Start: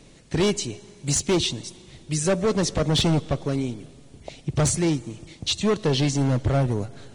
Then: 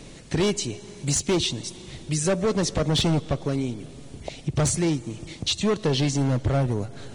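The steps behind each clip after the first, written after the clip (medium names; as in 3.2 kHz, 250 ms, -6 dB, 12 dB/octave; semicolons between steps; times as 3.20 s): compression 1.5:1, threshold -42 dBFS, peak gain reduction 8.5 dB; trim +7 dB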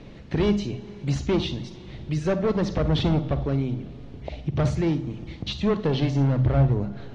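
distance through air 270 m; on a send at -12 dB: reverberation RT60 0.40 s, pre-delay 39 ms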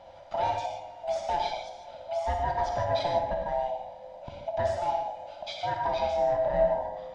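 split-band scrambler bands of 500 Hz; band-stop 2.7 kHz, Q 11; gated-style reverb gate 180 ms flat, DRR 1.5 dB; trim -7.5 dB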